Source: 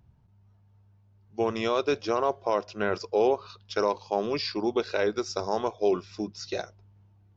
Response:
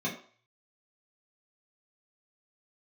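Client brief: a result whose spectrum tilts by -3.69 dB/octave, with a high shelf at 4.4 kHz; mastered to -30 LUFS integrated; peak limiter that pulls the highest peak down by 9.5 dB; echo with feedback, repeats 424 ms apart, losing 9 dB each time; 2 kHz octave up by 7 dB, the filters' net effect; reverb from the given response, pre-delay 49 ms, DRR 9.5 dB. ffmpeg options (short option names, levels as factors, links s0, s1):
-filter_complex "[0:a]equalizer=f=2000:t=o:g=8.5,highshelf=f=4400:g=6,alimiter=limit=0.133:level=0:latency=1,aecho=1:1:424|848|1272|1696:0.355|0.124|0.0435|0.0152,asplit=2[s0][s1];[1:a]atrim=start_sample=2205,adelay=49[s2];[s1][s2]afir=irnorm=-1:irlink=0,volume=0.158[s3];[s0][s3]amix=inputs=2:normalize=0,volume=0.944"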